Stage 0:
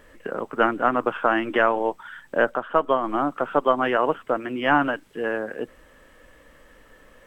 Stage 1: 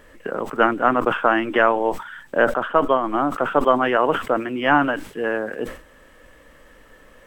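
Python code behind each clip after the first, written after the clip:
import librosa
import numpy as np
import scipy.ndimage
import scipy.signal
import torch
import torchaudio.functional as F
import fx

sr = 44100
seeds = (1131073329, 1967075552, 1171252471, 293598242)

y = fx.sustainer(x, sr, db_per_s=120.0)
y = y * 10.0 ** (2.5 / 20.0)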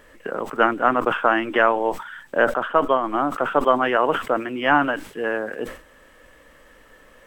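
y = fx.low_shelf(x, sr, hz=340.0, db=-4.0)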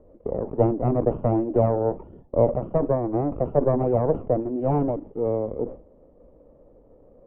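y = fx.lower_of_two(x, sr, delay_ms=0.31)
y = fx.ladder_lowpass(y, sr, hz=750.0, resonance_pct=25)
y = y * 10.0 ** (6.5 / 20.0)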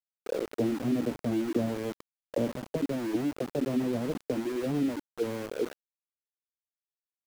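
y = fx.auto_wah(x, sr, base_hz=250.0, top_hz=1400.0, q=2.9, full_db=-20.0, direction='down')
y = np.where(np.abs(y) >= 10.0 ** (-35.5 / 20.0), y, 0.0)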